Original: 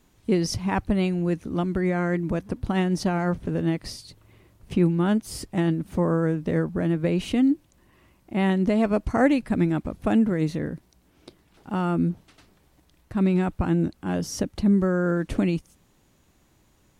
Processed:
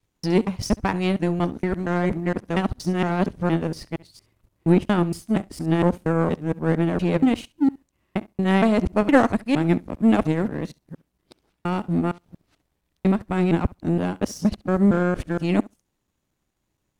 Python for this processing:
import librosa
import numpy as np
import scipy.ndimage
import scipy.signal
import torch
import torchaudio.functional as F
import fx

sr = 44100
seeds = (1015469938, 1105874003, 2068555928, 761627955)

y = fx.local_reverse(x, sr, ms=233.0)
y = fx.room_flutter(y, sr, wall_m=11.7, rt60_s=0.25)
y = fx.power_curve(y, sr, exponent=1.4)
y = F.gain(torch.from_numpy(y), 6.0).numpy()